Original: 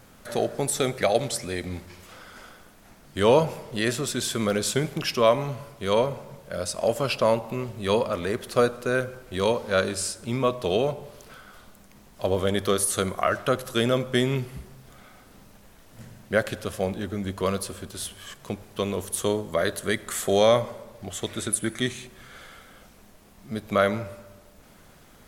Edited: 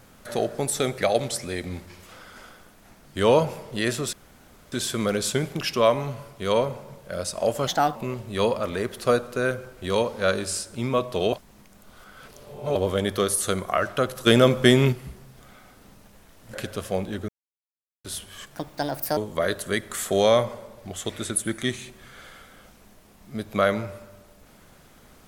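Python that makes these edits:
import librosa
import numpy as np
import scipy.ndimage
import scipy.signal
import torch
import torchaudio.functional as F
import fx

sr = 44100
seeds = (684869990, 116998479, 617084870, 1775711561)

y = fx.edit(x, sr, fx.insert_room_tone(at_s=4.13, length_s=0.59),
    fx.speed_span(start_s=7.08, length_s=0.37, speed=1.3),
    fx.reverse_span(start_s=10.82, length_s=1.43),
    fx.clip_gain(start_s=13.76, length_s=0.66, db=6.5),
    fx.cut(start_s=16.03, length_s=0.39),
    fx.silence(start_s=17.17, length_s=0.76),
    fx.speed_span(start_s=18.44, length_s=0.9, speed=1.46), tone=tone)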